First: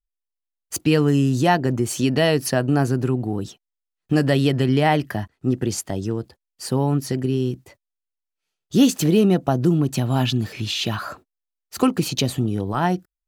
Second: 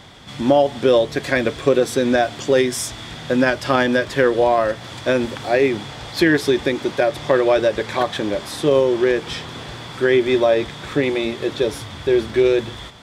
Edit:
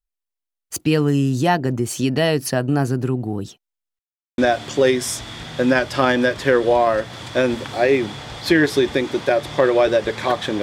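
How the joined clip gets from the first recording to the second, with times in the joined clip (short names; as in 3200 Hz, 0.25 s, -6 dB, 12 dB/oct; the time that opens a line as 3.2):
first
3.99–4.38 mute
4.38 switch to second from 2.09 s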